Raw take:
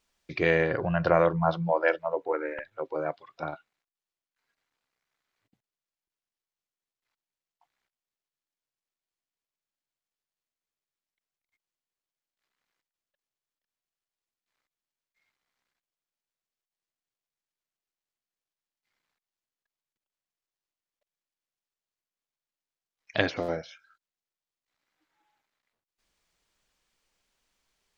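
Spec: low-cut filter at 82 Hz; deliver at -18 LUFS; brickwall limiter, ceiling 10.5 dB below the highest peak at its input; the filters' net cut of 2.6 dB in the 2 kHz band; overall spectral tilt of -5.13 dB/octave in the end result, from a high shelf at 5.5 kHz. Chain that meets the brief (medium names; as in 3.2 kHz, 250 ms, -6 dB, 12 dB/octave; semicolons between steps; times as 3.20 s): high-pass 82 Hz; peaking EQ 2 kHz -4 dB; treble shelf 5.5 kHz +6.5 dB; trim +13.5 dB; peak limiter -2.5 dBFS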